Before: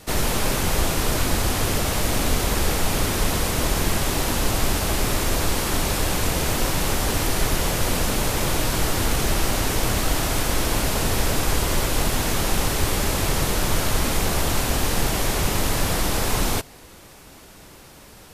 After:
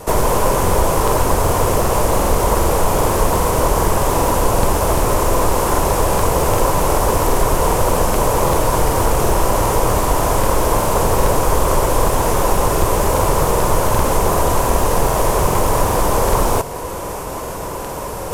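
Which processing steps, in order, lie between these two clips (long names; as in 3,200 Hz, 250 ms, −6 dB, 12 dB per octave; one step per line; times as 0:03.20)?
in parallel at +3 dB: downward compressor, threshold −30 dBFS, peak gain reduction 14.5 dB
on the sum: graphic EQ with 10 bands 250 Hz −5 dB, 500 Hz +8 dB, 2,000 Hz −5 dB, 4,000 Hz −10 dB
reversed playback
upward compression, threshold −20 dBFS
reversed playback
parametric band 1,000 Hz +11 dB 0.27 octaves
regular buffer underruns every 0.39 s, samples 2,048, repeat, from 0:00.64
highs frequency-modulated by the lows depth 0.35 ms
level +3 dB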